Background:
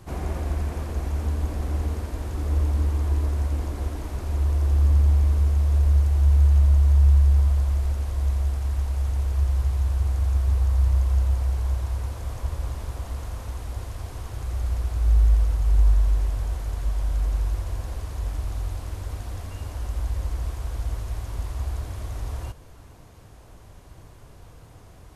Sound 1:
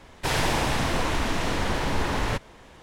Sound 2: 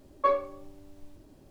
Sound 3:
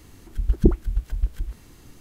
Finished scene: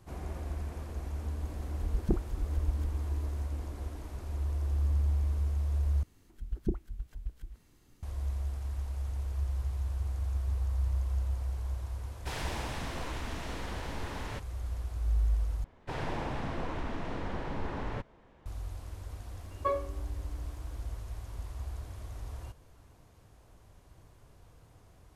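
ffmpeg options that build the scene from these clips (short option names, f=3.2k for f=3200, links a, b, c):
-filter_complex "[3:a]asplit=2[a][b];[1:a]asplit=2[c][d];[0:a]volume=-10.5dB[e];[a]acontrast=39[f];[d]lowpass=f=1.1k:p=1[g];[2:a]lowshelf=f=220:t=q:w=3:g=-11.5[h];[e]asplit=3[i][j][k];[i]atrim=end=6.034[l];[b]atrim=end=2,asetpts=PTS-STARTPTS,volume=-15dB[m];[j]atrim=start=8.026:end=15.644[n];[g]atrim=end=2.82,asetpts=PTS-STARTPTS,volume=-9dB[o];[k]atrim=start=18.456[p];[f]atrim=end=2,asetpts=PTS-STARTPTS,volume=-15.5dB,afade=t=in:d=0.004:c=hsin,afade=t=out:st=1.996:d=0.004:c=hsin,adelay=1450[q];[c]atrim=end=2.82,asetpts=PTS-STARTPTS,volume=-13.5dB,afade=t=in:d=0.004:c=hsin,afade=t=out:st=2.816:d=0.004:c=hsin,adelay=12020[r];[h]atrim=end=1.5,asetpts=PTS-STARTPTS,volume=-7.5dB,afade=t=in:d=0.004:c=hsin,afade=t=out:st=1.496:d=0.004:c=hsin,adelay=19410[s];[l][m]acrossfade=d=0.004:c1=hsin:c2=hsin[t];[t][n]acrossfade=d=0.004:c1=hsin:c2=hsin[u];[u][o]acrossfade=d=0.004:c1=hsin:c2=hsin[v];[v][p]acrossfade=d=0.004:c1=hsin:c2=hsin[w];[w][q][r][s]amix=inputs=4:normalize=0"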